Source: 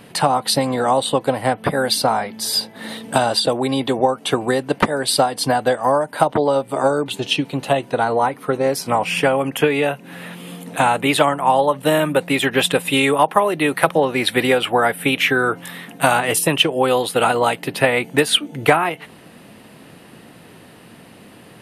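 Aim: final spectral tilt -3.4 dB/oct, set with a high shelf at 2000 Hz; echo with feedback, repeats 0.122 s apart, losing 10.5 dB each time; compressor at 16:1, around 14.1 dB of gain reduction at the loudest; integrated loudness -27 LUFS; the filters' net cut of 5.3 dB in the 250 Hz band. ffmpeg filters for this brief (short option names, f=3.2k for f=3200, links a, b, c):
-af "equalizer=f=250:t=o:g=-6.5,highshelf=f=2k:g=-3.5,acompressor=threshold=-25dB:ratio=16,aecho=1:1:122|244|366:0.299|0.0896|0.0269,volume=2.5dB"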